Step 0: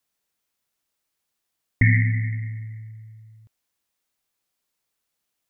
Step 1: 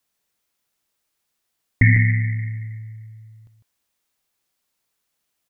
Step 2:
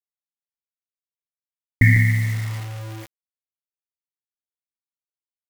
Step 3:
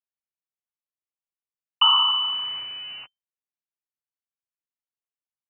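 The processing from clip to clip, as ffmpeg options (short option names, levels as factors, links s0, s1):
-af "aecho=1:1:152:0.376,volume=1.41"
-af "acrusher=bits=5:mix=0:aa=0.000001"
-af "lowpass=f=2600:t=q:w=0.5098,lowpass=f=2600:t=q:w=0.6013,lowpass=f=2600:t=q:w=0.9,lowpass=f=2600:t=q:w=2.563,afreqshift=-3100,equalizer=f=125:t=o:w=1:g=9,equalizer=f=500:t=o:w=1:g=-3,equalizer=f=2000:t=o:w=1:g=-4,volume=0.794"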